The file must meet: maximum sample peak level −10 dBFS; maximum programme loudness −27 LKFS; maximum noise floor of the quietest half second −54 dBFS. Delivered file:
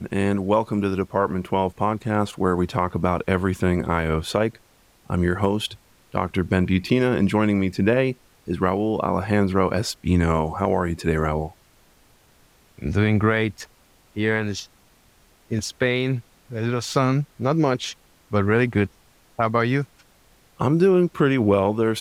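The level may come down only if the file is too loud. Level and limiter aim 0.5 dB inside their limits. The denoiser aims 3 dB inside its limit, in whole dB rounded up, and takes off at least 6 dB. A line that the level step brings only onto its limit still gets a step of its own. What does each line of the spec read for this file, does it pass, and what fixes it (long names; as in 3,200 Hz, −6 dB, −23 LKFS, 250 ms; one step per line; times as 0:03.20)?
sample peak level −7.5 dBFS: out of spec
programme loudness −22.5 LKFS: out of spec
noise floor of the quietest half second −57 dBFS: in spec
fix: level −5 dB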